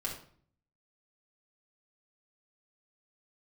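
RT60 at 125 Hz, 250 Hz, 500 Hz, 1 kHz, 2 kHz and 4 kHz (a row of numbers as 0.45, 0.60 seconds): 0.85, 0.70, 0.55, 0.50, 0.45, 0.40 seconds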